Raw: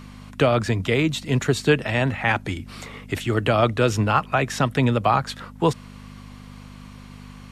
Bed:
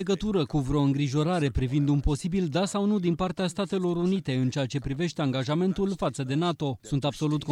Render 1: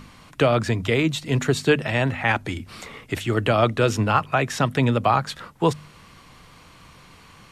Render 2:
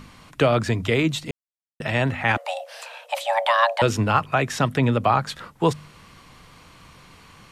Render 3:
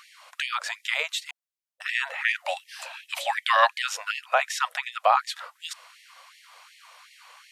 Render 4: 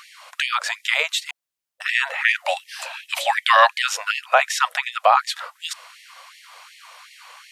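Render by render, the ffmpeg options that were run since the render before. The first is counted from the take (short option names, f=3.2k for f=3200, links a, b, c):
-af "bandreject=f=50:t=h:w=4,bandreject=f=100:t=h:w=4,bandreject=f=150:t=h:w=4,bandreject=f=200:t=h:w=4,bandreject=f=250:t=h:w=4"
-filter_complex "[0:a]asettb=1/sr,asplit=3[a][b][c];[a]atrim=end=2.374[d];[b]atrim=start=2.37:end=3.82,asetpts=PTS-STARTPTS,afade=t=in:d=0.004:c=qsin,afade=t=out:st=1.446:d=0.004:c=qsin,afreqshift=460[e];[c]atrim=start=3.816[f];[d][e]acrossfade=d=0.004:c1=hsin:c2=qsin[g];[g][f]acrossfade=d=0.004:c1=qsin:c2=hsin,asettb=1/sr,asplit=3[h][i][j];[h]atrim=end=4.774[k];[i]atrim=start=4.77:end=5.27,asetpts=PTS-STARTPTS,afade=t=in:d=0.004:c=qsin,afade=t=out:st=0.496:d=0.004:c=qsin,acrossover=split=3500[l][m];[m]acompressor=threshold=-43dB:ratio=4:attack=1:release=60[n];[l][n]amix=inputs=2:normalize=0[o];[j]atrim=start=5.266[p];[k][o]acrossfade=d=0.004:c1=hsin:c2=qsin[q];[q][p]acrossfade=d=0.004:c1=qsin:c2=hsin,asplit=3[r][s][t];[r]atrim=end=1.31,asetpts=PTS-STARTPTS,afade=t=out:st=1.306:d=0.004:c=hsin[u];[s]atrim=start=1.31:end=1.8,asetpts=PTS-STARTPTS,volume=0[v];[t]atrim=start=1.8,asetpts=PTS-STARTPTS,afade=t=in:d=0.004:c=hsin[w];[u][v][w]concat=n=3:v=0:a=1"
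-af "afftfilt=real='re*gte(b*sr/1024,470*pow(1800/470,0.5+0.5*sin(2*PI*2.7*pts/sr)))':imag='im*gte(b*sr/1024,470*pow(1800/470,0.5+0.5*sin(2*PI*2.7*pts/sr)))':win_size=1024:overlap=0.75"
-af "volume=6.5dB,alimiter=limit=-3dB:level=0:latency=1"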